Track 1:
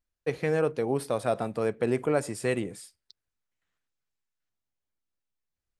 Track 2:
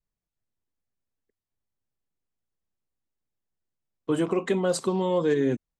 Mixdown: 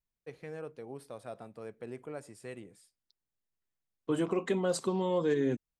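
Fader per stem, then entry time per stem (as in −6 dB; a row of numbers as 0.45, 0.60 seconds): −16.5, −5.5 decibels; 0.00, 0.00 seconds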